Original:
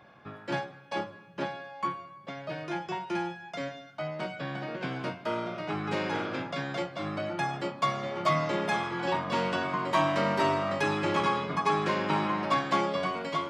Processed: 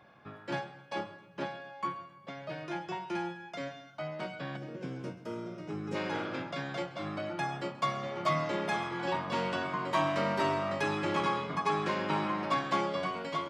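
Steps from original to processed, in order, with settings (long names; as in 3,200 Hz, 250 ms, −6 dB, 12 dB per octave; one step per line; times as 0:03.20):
gain on a spectral selection 0:04.57–0:05.95, 580–5,000 Hz −10 dB
on a send: repeating echo 132 ms, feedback 36%, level −18 dB
on the sum: level −3.5 dB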